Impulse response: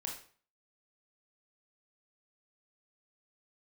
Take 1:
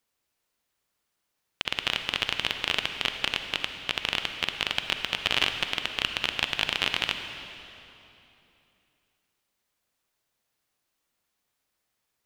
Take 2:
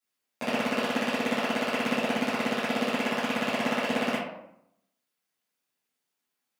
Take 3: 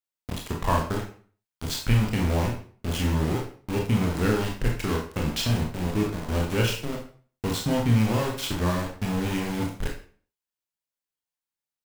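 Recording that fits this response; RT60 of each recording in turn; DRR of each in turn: 3; 3.0, 0.75, 0.45 s; 6.0, -12.0, -0.5 dB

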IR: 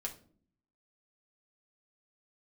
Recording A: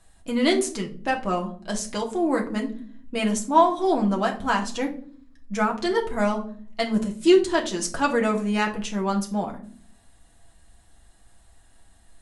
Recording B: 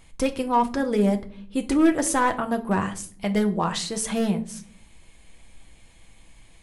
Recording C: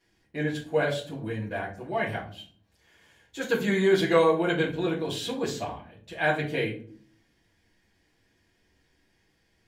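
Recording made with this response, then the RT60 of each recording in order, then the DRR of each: A; 0.50, 0.50, 0.50 s; 0.5, 5.0, -7.0 dB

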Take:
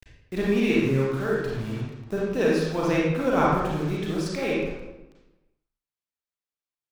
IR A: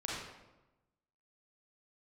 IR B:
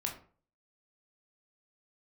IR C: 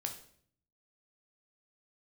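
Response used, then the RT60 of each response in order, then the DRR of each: A; 1.0, 0.45, 0.60 s; -5.5, 0.0, 3.0 dB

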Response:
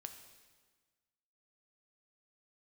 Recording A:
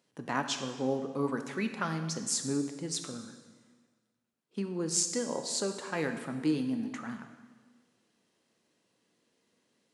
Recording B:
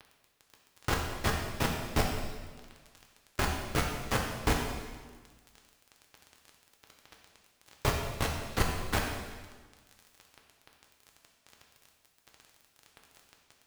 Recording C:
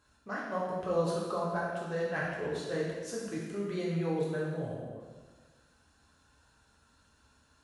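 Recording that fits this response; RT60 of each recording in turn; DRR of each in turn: A; 1.5, 1.4, 1.4 s; 6.0, -0.5, -6.0 dB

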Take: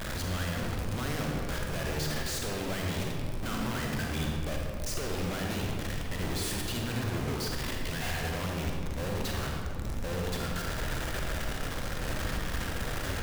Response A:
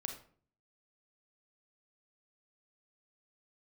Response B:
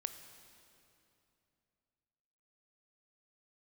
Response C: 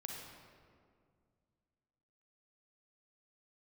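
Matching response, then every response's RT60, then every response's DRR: C; 0.50, 2.8, 2.1 s; 4.0, 8.5, -0.5 dB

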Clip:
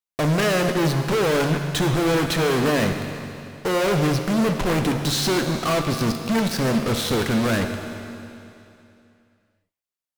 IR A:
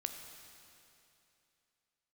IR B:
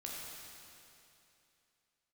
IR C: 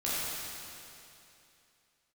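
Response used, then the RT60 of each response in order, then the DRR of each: A; 2.8, 2.8, 2.8 s; 5.0, -4.0, -10.0 dB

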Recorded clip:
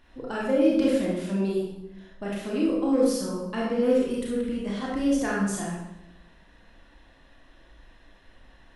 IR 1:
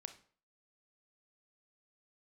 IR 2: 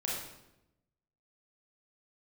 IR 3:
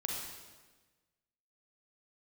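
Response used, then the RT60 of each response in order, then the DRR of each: 2; 0.45, 0.90, 1.3 s; 8.5, -5.0, -1.5 dB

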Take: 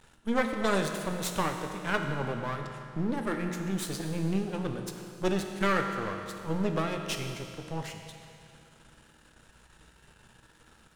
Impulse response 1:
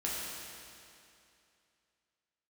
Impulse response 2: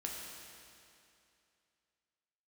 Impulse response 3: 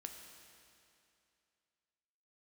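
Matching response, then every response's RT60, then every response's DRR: 3; 2.6, 2.6, 2.6 s; -6.0, -2.0, 3.5 dB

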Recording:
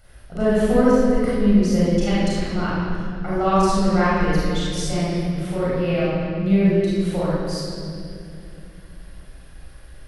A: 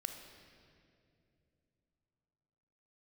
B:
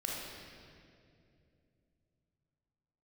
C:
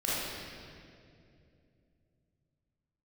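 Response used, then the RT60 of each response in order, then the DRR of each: C; 2.7, 2.5, 2.5 s; 5.0, -3.5, -9.5 dB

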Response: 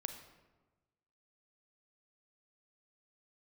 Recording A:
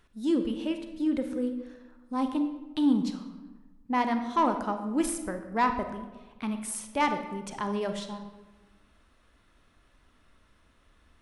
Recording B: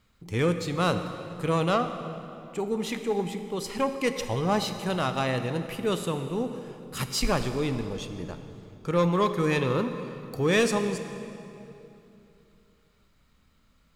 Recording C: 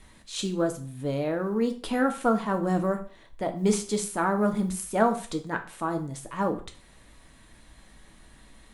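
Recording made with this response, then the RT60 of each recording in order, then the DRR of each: A; 1.2, 2.9, 0.45 s; 7.0, 8.0, 5.0 dB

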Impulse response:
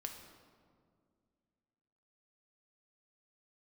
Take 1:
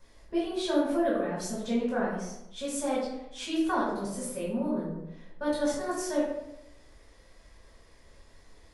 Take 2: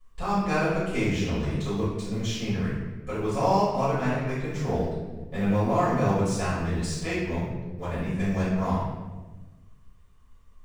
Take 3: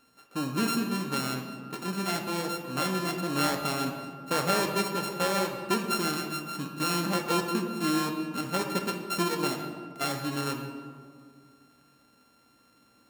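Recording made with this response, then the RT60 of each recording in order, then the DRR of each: 3; 0.90, 1.2, 2.1 s; -7.0, -13.0, 3.0 dB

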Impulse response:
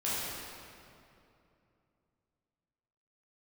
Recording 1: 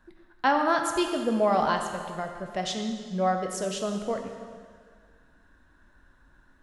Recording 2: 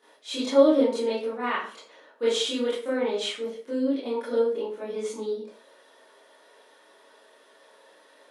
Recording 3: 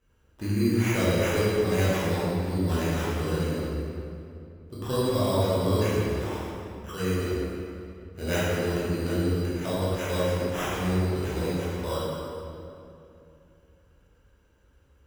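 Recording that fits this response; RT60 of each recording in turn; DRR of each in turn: 3; 1.9, 0.45, 2.7 s; 3.5, -11.0, -9.5 dB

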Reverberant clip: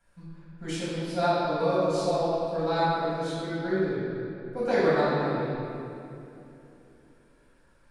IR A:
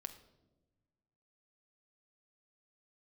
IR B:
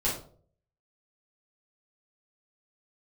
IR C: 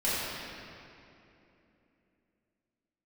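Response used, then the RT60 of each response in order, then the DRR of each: C; 1.2, 0.50, 2.9 s; 7.0, -8.5, -11.5 dB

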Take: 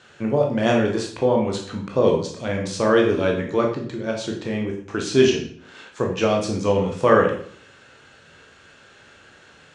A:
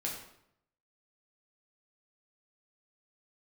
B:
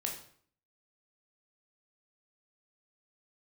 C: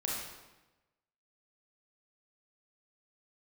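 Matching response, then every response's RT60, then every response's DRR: B; 0.75, 0.55, 1.1 s; -3.0, 0.0, -4.0 dB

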